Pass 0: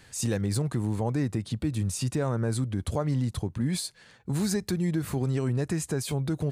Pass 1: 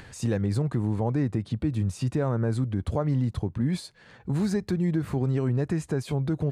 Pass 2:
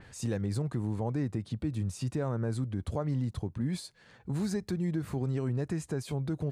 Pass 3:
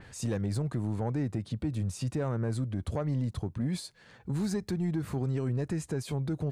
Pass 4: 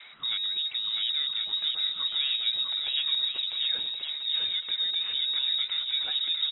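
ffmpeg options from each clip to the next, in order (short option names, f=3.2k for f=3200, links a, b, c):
-af "lowpass=f=1.8k:p=1,acompressor=mode=upward:threshold=-41dB:ratio=2.5,volume=2dB"
-af "adynamicequalizer=threshold=0.00251:dfrequency=4100:dqfactor=0.7:tfrequency=4100:tqfactor=0.7:attack=5:release=100:ratio=0.375:range=2.5:mode=boostabove:tftype=highshelf,volume=-6dB"
-af "asoftclip=type=tanh:threshold=-24dB,volume=2dB"
-af "equalizer=f=2.5k:t=o:w=2:g=7,aecho=1:1:650|1072|1347|1526|1642:0.631|0.398|0.251|0.158|0.1,lowpass=f=3.3k:t=q:w=0.5098,lowpass=f=3.3k:t=q:w=0.6013,lowpass=f=3.3k:t=q:w=0.9,lowpass=f=3.3k:t=q:w=2.563,afreqshift=-3900"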